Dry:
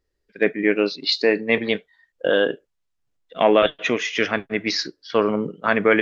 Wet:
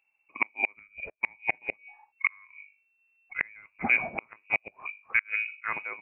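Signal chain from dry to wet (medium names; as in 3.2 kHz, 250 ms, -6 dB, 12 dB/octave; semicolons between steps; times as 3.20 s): fade out at the end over 1.28 s; hum notches 50/100/150/200/250/300/350/400/450 Hz; inverted gate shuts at -10 dBFS, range -35 dB; low-pass that closes with the level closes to 1.4 kHz, closed at -22.5 dBFS; frequency inversion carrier 2.7 kHz; bass shelf 92 Hz -11 dB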